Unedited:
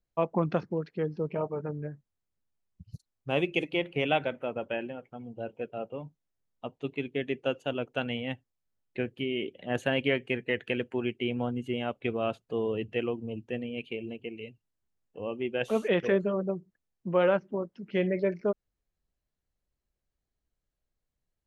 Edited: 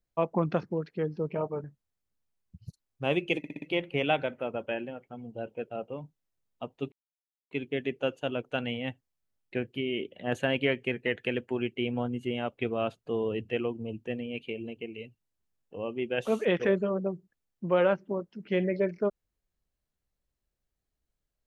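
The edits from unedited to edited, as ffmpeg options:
-filter_complex "[0:a]asplit=7[a][b][c][d][e][f][g];[a]atrim=end=1.642[h];[b]atrim=start=1.898:end=3.702[i];[c]atrim=start=3.638:end=3.702[j];[d]atrim=start=3.638:end=3.702[k];[e]atrim=start=3.638:end=3.702[l];[f]atrim=start=3.638:end=6.94,asetpts=PTS-STARTPTS,afade=t=out:st=3.298:d=0.004:c=hsin,apad=pad_dur=0.59[m];[g]atrim=start=6.94,asetpts=PTS-STARTPTS,afade=t=in:d=0.004:c=hsin[n];[h][i]acrossfade=d=0.004:c1=hsin:c2=hsin[o];[o][j]acrossfade=d=0.004:c1=hsin:c2=hsin[p];[p][k]acrossfade=d=0.004:c1=hsin:c2=hsin[q];[q][l]acrossfade=d=0.004:c1=hsin:c2=hsin[r];[m][n]concat=n=2:v=0:a=1[s];[r][s]acrossfade=d=0.004:c1=hsin:c2=hsin"

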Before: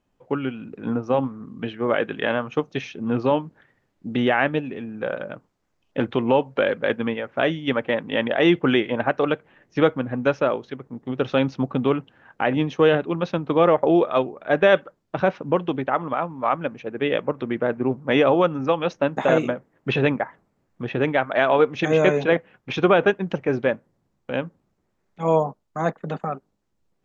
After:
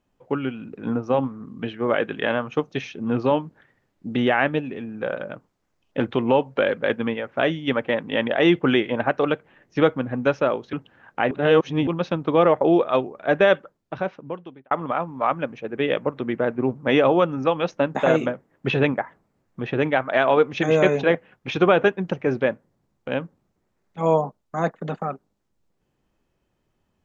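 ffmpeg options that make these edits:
-filter_complex "[0:a]asplit=5[a][b][c][d][e];[a]atrim=end=10.732[f];[b]atrim=start=11.948:end=12.532[g];[c]atrim=start=12.528:end=13.092,asetpts=PTS-STARTPTS,areverse[h];[d]atrim=start=13.088:end=15.93,asetpts=PTS-STARTPTS,afade=t=out:st=1.482:d=1.36[i];[e]atrim=start=15.93,asetpts=PTS-STARTPTS,afade=t=in:d=0.004:c=hsin[j];[f][g]acrossfade=d=0.004:c1=hsin:c2=hsin[k];[k][h]acrossfade=d=0.004:c1=hsin:c2=hsin[l];[i][j]concat=n=2:v=0:a=1[m];[l][m]acrossfade=d=0.004:c1=hsin:c2=hsin"

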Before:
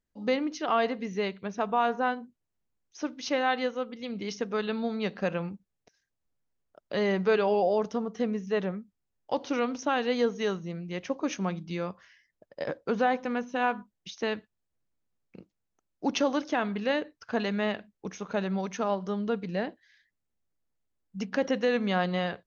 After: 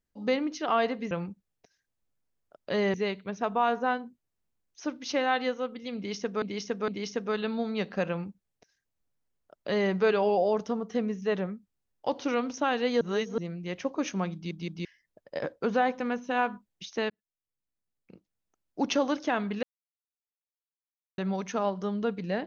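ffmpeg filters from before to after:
-filter_complex "[0:a]asplit=13[a][b][c][d][e][f][g][h][i][j][k][l][m];[a]atrim=end=1.112[n];[b]atrim=start=5.338:end=7.172[o];[c]atrim=start=1.108:end=4.592[p];[d]atrim=start=4.128:end=4.592[q];[e]atrim=start=4.128:end=10.262[r];[f]atrim=start=10.258:end=10.632,asetpts=PTS-STARTPTS,areverse[s];[g]atrim=start=10.628:end=11.762[t];[h]atrim=start=11.588:end=11.762[u];[i]atrim=start=11.588:end=11.762[v];[j]atrim=start=12.098:end=14.35,asetpts=PTS-STARTPTS,afade=t=out:st=2.248:d=0.004:c=hsin[w];[k]atrim=start=14.35:end=16.88,asetpts=PTS-STARTPTS,afade=t=in:d=1.71,afade=t=out:st=2.526:d=0.004:c=hsin[x];[l]atrim=start=16.88:end=18.43,asetpts=PTS-STARTPTS,volume=0[y];[m]atrim=start=18.43,asetpts=PTS-STARTPTS,afade=t=in:d=0.004:c=hsin[z];[n][o]acrossfade=d=0.004:c1=hsin:c2=hsin[aa];[aa][p]acrossfade=d=0.004:c1=hsin:c2=hsin[ab];[ab][q]acrossfade=d=0.004:c1=hsin:c2=hsin[ac];[ac][r]acrossfade=d=0.004:c1=hsin:c2=hsin[ad];[ad][s]acrossfade=d=0.004:c1=hsin:c2=hsin[ae];[ae][t]acrossfade=d=0.004:c1=hsin:c2=hsin[af];[af][u]acrossfade=d=0.004:c1=hsin:c2=hsin[ag];[ag][v]acrossfade=d=0.004:c1=hsin:c2=hsin[ah];[w][x][y][z]concat=n=4:v=0:a=1[ai];[ah][ai]acrossfade=d=0.004:c1=hsin:c2=hsin"

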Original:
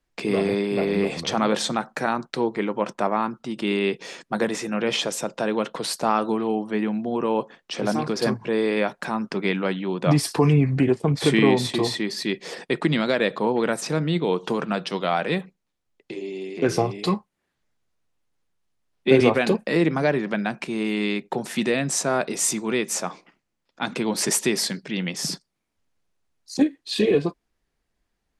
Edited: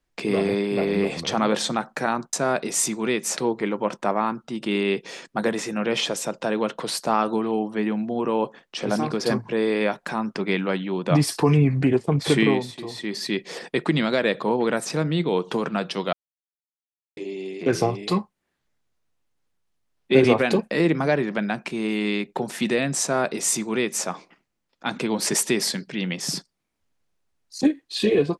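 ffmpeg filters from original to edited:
-filter_complex "[0:a]asplit=7[a][b][c][d][e][f][g];[a]atrim=end=2.332[h];[b]atrim=start=21.978:end=23.022[i];[c]atrim=start=2.328:end=11.64,asetpts=PTS-STARTPTS,afade=t=out:st=9.042:d=0.27:silence=0.266073[j];[d]atrim=start=11.64:end=11.87,asetpts=PTS-STARTPTS,volume=-11.5dB[k];[e]atrim=start=11.87:end=15.09,asetpts=PTS-STARTPTS,afade=t=in:d=0.27:silence=0.266073,afade=t=out:st=3.216:d=0.004:c=hsin[l];[f]atrim=start=15.09:end=16.13,asetpts=PTS-STARTPTS,volume=0[m];[g]atrim=start=16.13,asetpts=PTS-STARTPTS,afade=t=in:d=0.004:c=hsin[n];[h][i]acrossfade=d=0.004:c1=hsin:c2=hsin[o];[j][k][l][m][n]concat=n=5:v=0:a=1[p];[o][p]acrossfade=d=0.004:c1=hsin:c2=hsin"

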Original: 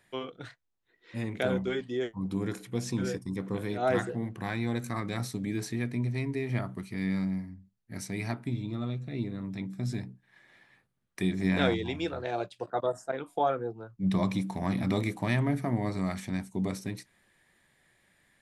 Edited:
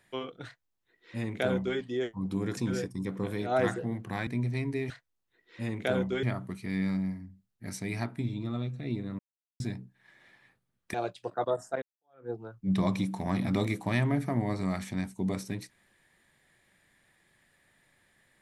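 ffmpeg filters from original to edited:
-filter_complex "[0:a]asplit=9[a][b][c][d][e][f][g][h][i];[a]atrim=end=2.572[j];[b]atrim=start=2.878:end=4.582[k];[c]atrim=start=5.878:end=6.512[l];[d]atrim=start=0.448:end=1.782[m];[e]atrim=start=6.508:end=9.47,asetpts=PTS-STARTPTS,afade=t=out:st=2.958:d=0.004:c=hsin[n];[f]atrim=start=9.47:end=9.88,asetpts=PTS-STARTPTS,volume=0[o];[g]atrim=start=9.88:end=11.222,asetpts=PTS-STARTPTS,afade=t=in:d=0.004:c=hsin[p];[h]atrim=start=12.298:end=13.18,asetpts=PTS-STARTPTS,afade=t=out:st=0.878:d=0.004:c=hsin[q];[i]atrim=start=13.18,asetpts=PTS-STARTPTS,afade=t=in:d=0.48:c=exp[r];[j][k]acrossfade=d=0.004:c1=hsin:c2=hsin[s];[s][l]acrossfade=d=0.004:c1=hsin:c2=hsin[t];[t][m]acrossfade=d=0.004:c1=hsin:c2=hsin[u];[n][o][p]concat=n=3:v=0:a=1[v];[u][v]acrossfade=d=0.004:c1=hsin:c2=hsin[w];[q][r]concat=n=2:v=0:a=1[x];[w][x]acrossfade=d=0.004:c1=hsin:c2=hsin"

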